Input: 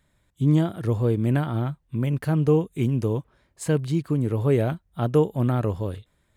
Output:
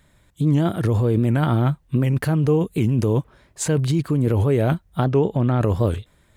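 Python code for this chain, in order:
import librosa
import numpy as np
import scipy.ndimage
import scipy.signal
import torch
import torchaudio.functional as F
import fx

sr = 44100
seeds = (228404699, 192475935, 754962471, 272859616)

p1 = fx.lowpass(x, sr, hz=5100.0, slope=12, at=(5.04, 5.59), fade=0.02)
p2 = fx.over_compress(p1, sr, threshold_db=-26.0, ratio=-0.5)
p3 = p1 + (p2 * librosa.db_to_amplitude(1.0))
y = fx.record_warp(p3, sr, rpm=78.0, depth_cents=160.0)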